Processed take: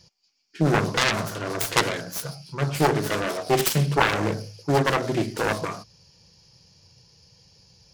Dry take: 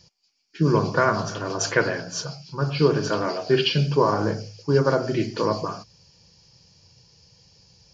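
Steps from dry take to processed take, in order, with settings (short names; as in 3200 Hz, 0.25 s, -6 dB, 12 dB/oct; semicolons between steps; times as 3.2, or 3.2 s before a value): self-modulated delay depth 0.97 ms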